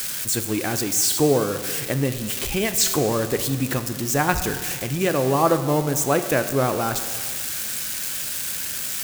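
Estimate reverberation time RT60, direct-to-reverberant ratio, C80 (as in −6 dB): 1.8 s, 8.5 dB, 11.5 dB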